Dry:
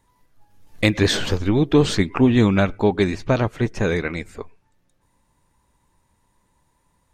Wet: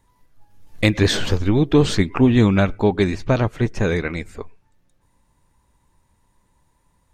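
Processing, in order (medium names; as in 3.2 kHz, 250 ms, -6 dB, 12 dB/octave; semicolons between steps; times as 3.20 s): bass shelf 110 Hz +5 dB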